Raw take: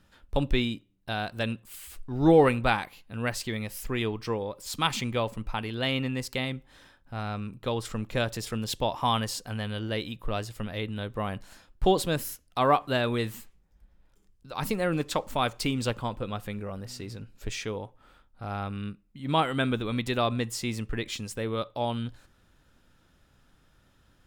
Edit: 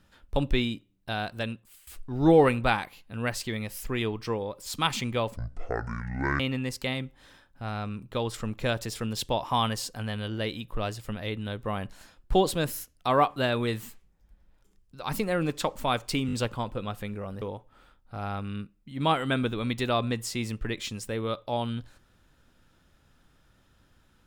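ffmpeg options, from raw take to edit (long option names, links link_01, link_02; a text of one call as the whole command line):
ffmpeg -i in.wav -filter_complex "[0:a]asplit=8[link_01][link_02][link_03][link_04][link_05][link_06][link_07][link_08];[link_01]atrim=end=1.87,asetpts=PTS-STARTPTS,afade=type=out:start_time=1.28:duration=0.59:silence=0.149624[link_09];[link_02]atrim=start=1.87:end=5.364,asetpts=PTS-STARTPTS,afade=type=in:duration=0.004:curve=hsin:silence=0.149624[link_10];[link_03]atrim=start=5.36:end=5.91,asetpts=PTS-STARTPTS,asetrate=23373,aresample=44100,atrim=end_sample=45764,asetpts=PTS-STARTPTS[link_11];[link_04]atrim=start=5.906:end=15.802[link_12];[link_05]atrim=start=15.778:end=15.802[link_13];[link_06]atrim=start=15.778:end=15.802[link_14];[link_07]atrim=start=15.778:end=16.872[link_15];[link_08]atrim=start=17.698[link_16];[link_09][link_10]concat=n=2:v=0:a=1[link_17];[link_17][link_11]acrossfade=duration=0.004:curve1=hsin:curve2=hsin[link_18];[link_18][link_12]acrossfade=duration=0.004:curve1=hsin:curve2=hsin[link_19];[link_19][link_13]acrossfade=duration=0.004:curve1=hsin:curve2=hsin[link_20];[link_20][link_14]acrossfade=duration=0.004:curve1=hsin:curve2=hsin[link_21];[link_21][link_15]acrossfade=duration=0.004:curve1=hsin:curve2=hsin[link_22];[link_22][link_16]acrossfade=duration=0.004:curve1=hsin:curve2=hsin" out.wav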